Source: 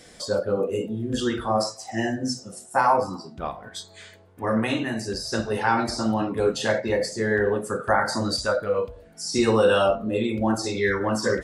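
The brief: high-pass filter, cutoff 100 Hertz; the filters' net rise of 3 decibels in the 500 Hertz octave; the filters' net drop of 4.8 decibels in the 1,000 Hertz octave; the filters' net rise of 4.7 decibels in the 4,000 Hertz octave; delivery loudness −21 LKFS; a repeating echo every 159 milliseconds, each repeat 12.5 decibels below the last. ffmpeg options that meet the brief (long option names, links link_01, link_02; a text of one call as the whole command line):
ffmpeg -i in.wav -af "highpass=100,equalizer=frequency=500:width_type=o:gain=5.5,equalizer=frequency=1000:width_type=o:gain=-9,equalizer=frequency=4000:width_type=o:gain=6.5,aecho=1:1:159|318|477:0.237|0.0569|0.0137,volume=2dB" out.wav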